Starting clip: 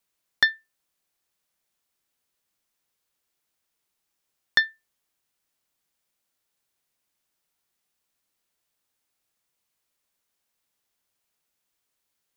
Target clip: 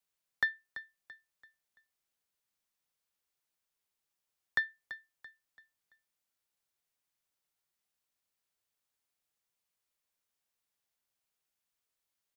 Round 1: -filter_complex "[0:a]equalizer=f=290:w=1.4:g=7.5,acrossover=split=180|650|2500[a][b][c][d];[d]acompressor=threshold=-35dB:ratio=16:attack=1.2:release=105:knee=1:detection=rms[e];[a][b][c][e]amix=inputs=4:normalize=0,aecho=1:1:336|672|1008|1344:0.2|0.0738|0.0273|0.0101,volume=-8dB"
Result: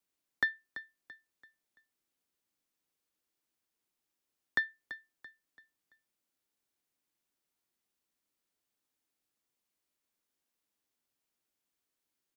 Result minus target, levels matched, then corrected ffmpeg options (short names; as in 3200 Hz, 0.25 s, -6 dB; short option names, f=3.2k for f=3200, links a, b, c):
250 Hz band +8.0 dB
-filter_complex "[0:a]equalizer=f=290:w=1.4:g=-3,acrossover=split=180|650|2500[a][b][c][d];[d]acompressor=threshold=-35dB:ratio=16:attack=1.2:release=105:knee=1:detection=rms[e];[a][b][c][e]amix=inputs=4:normalize=0,aecho=1:1:336|672|1008|1344:0.2|0.0738|0.0273|0.0101,volume=-8dB"